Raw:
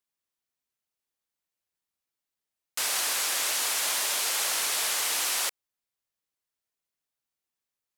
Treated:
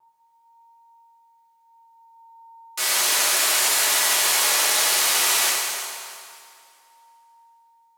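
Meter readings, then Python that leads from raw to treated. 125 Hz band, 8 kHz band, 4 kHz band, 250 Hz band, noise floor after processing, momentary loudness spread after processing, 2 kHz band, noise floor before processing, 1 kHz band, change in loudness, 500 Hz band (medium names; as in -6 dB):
no reading, +8.0 dB, +8.0 dB, +8.5 dB, -61 dBFS, 13 LU, +9.0 dB, under -85 dBFS, +9.0 dB, +8.0 dB, +9.0 dB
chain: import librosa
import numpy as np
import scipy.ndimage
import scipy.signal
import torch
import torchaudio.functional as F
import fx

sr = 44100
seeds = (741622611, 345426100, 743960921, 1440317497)

p1 = x + 10.0 ** (-63.0 / 20.0) * np.sin(2.0 * np.pi * 920.0 * np.arange(len(x)) / sr)
p2 = p1 + fx.echo_heads(p1, sr, ms=112, heads='second and third', feedback_pct=42, wet_db=-15.0, dry=0)
p3 = fx.vibrato(p2, sr, rate_hz=0.31, depth_cents=8.2)
y = fx.rev_fdn(p3, sr, rt60_s=2.1, lf_ratio=0.8, hf_ratio=0.75, size_ms=48.0, drr_db=-8.0)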